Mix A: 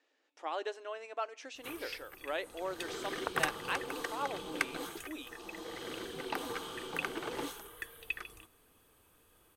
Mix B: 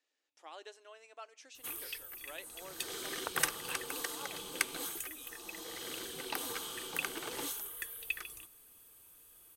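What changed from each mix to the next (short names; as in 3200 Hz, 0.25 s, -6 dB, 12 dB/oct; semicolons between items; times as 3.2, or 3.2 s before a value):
background +9.0 dB; master: add pre-emphasis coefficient 0.8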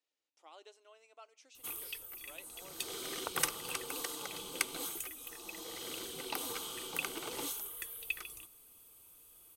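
speech -5.5 dB; master: add bell 1700 Hz -10.5 dB 0.25 oct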